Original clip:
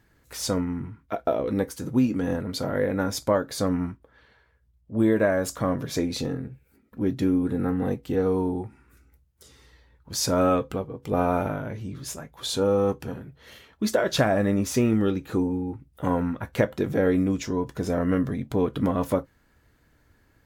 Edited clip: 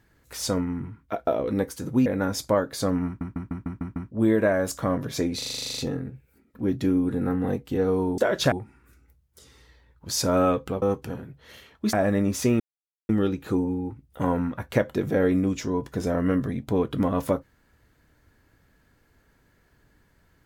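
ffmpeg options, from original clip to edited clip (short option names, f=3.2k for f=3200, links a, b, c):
-filter_complex "[0:a]asplit=24[a][b][c][d][e][f][g][h][i][j][k][l][m][n][o][p][q][r][s][t][u][v][w][x];[a]atrim=end=2.062[y];[b]atrim=start=2.838:end=3.992[z];[c]atrim=start=3.838:end=3.992[aa];[d]atrim=start=3.838:end=3.992[ab];[e]atrim=start=3.838:end=3.992[ac];[f]atrim=start=3.838:end=3.992[ad];[g]atrim=start=3.838:end=3.992[ae];[h]atrim=start=3.838:end=3.992[af];[i]atrim=start=4.888:end=6.202[ag];[j]atrim=start=6.158:end=6.202[ah];[k]atrim=start=6.158:end=6.202[ai];[l]atrim=start=6.158:end=6.202[aj];[m]atrim=start=6.158:end=6.202[ak];[n]atrim=start=6.158:end=6.202[al];[o]atrim=start=6.158:end=6.202[am];[p]atrim=start=6.158:end=6.202[an];[q]atrim=start=6.158:end=6.202[ao];[r]atrim=start=6.158:end=6.202[ap];[s]atrim=start=6.158:end=8.562[aq];[t]atrim=start=13.908:end=14.252[ar];[u]atrim=start=8.558:end=10.862[as];[v]atrim=start=12.798:end=13.912[at];[w]atrim=start=14.248:end=14.92,asetpts=PTS-STARTPTS,afade=t=out:st=0.668:d=0.004:c=hsin,apad=pad_dur=0.49[au];[x]atrim=start=14.92,asetpts=PTS-STARTPTS,afade=t=in:d=0.004:c=hsin[av];[y][z]acrossfade=d=0.004:c1=hsin:c2=hsin[aw];[aw][aa]acrossfade=d=0.004:c1=hsin:c2=hsin[ax];[ax][ab]acrossfade=d=0.004:c1=hsin:c2=hsin[ay];[ay][ac]acrossfade=d=0.004:c1=hsin:c2=hsin[az];[az][ad]acrossfade=d=0.004:c1=hsin:c2=hsin[ba];[ba][ae]acrossfade=d=0.004:c1=hsin:c2=hsin[bb];[bb][af]acrossfade=d=0.004:c1=hsin:c2=hsin[bc];[bc][ag]acrossfade=d=0.004:c1=hsin:c2=hsin[bd];[bd][ah]acrossfade=d=0.004:c1=hsin:c2=hsin[be];[be][ai]acrossfade=d=0.004:c1=hsin:c2=hsin[bf];[bf][aj]acrossfade=d=0.004:c1=hsin:c2=hsin[bg];[bg][ak]acrossfade=d=0.004:c1=hsin:c2=hsin[bh];[bh][al]acrossfade=d=0.004:c1=hsin:c2=hsin[bi];[bi][am]acrossfade=d=0.004:c1=hsin:c2=hsin[bj];[bj][an]acrossfade=d=0.004:c1=hsin:c2=hsin[bk];[bk][ao]acrossfade=d=0.004:c1=hsin:c2=hsin[bl];[bl][ap]acrossfade=d=0.004:c1=hsin:c2=hsin[bm];[bm][aq]acrossfade=d=0.004:c1=hsin:c2=hsin[bn];[bn][ar]acrossfade=d=0.004:c1=hsin:c2=hsin[bo];[bo][as]acrossfade=d=0.004:c1=hsin:c2=hsin[bp];[bp][at]acrossfade=d=0.004:c1=hsin:c2=hsin[bq];[au][av]concat=n=2:v=0:a=1[br];[bq][br]acrossfade=d=0.004:c1=hsin:c2=hsin"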